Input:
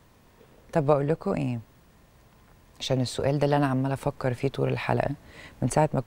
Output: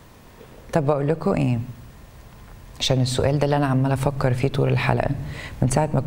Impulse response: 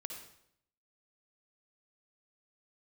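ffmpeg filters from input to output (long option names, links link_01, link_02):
-filter_complex "[0:a]asplit=2[link_01][link_02];[link_02]asubboost=boost=11.5:cutoff=160[link_03];[1:a]atrim=start_sample=2205[link_04];[link_03][link_04]afir=irnorm=-1:irlink=0,volume=-12.5dB[link_05];[link_01][link_05]amix=inputs=2:normalize=0,acompressor=threshold=-25dB:ratio=6,volume=9dB"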